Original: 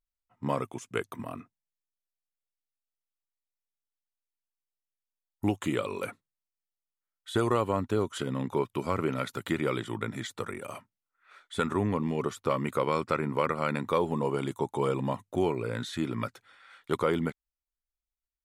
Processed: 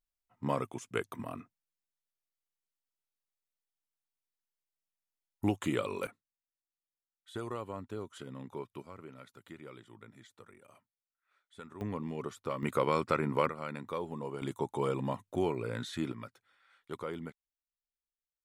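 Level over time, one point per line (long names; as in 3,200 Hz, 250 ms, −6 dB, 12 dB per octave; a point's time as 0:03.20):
−2.5 dB
from 0:06.07 −13 dB
from 0:08.82 −20 dB
from 0:11.81 −8.5 dB
from 0:12.63 −1.5 dB
from 0:13.49 −10.5 dB
from 0:14.42 −4 dB
from 0:16.12 −12.5 dB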